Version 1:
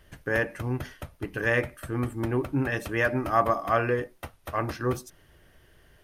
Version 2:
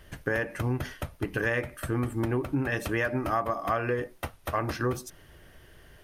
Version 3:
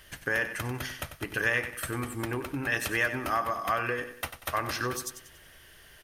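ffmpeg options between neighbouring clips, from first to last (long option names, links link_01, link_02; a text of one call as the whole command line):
ffmpeg -i in.wav -af "acompressor=threshold=-29dB:ratio=6,volume=4.5dB" out.wav
ffmpeg -i in.wav -filter_complex "[0:a]tiltshelf=frequency=1100:gain=-7,asplit=2[link_01][link_02];[link_02]aecho=0:1:94|188|282|376:0.282|0.116|0.0474|0.0194[link_03];[link_01][link_03]amix=inputs=2:normalize=0" out.wav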